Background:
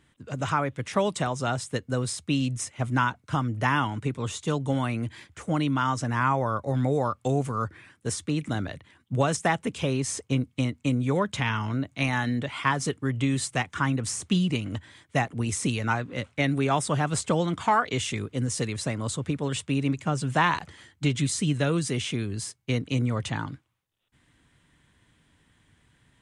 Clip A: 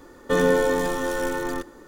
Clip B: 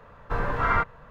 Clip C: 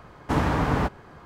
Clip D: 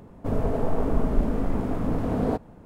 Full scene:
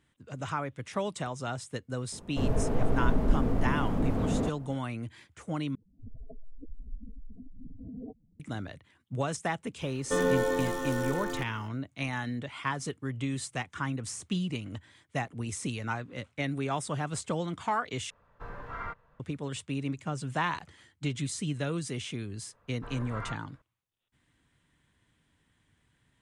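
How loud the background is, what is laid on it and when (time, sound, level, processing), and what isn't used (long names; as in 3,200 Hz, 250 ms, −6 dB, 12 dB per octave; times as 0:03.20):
background −7.5 dB
0:02.12: mix in D −2 dB + slew-rate limiting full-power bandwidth 20 Hz
0:05.75: overwrite with D −16.5 dB + expanding power law on the bin magnitudes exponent 3.6
0:09.81: mix in A −7 dB
0:18.10: overwrite with B −15.5 dB
0:22.52: mix in B −17 dB
not used: C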